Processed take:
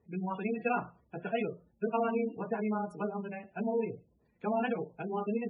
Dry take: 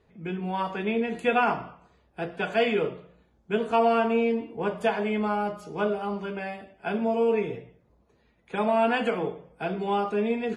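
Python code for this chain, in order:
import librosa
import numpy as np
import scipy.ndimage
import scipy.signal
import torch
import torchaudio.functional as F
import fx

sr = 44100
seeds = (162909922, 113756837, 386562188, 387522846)

y = fx.stretch_grains(x, sr, factor=0.52, grain_ms=71.0)
y = fx.spec_gate(y, sr, threshold_db=-20, keep='strong')
y = scipy.signal.sosfilt(scipy.signal.butter(2, 81.0, 'highpass', fs=sr, output='sos'), y)
y = fx.bass_treble(y, sr, bass_db=6, treble_db=7)
y = y * librosa.db_to_amplitude(-7.0)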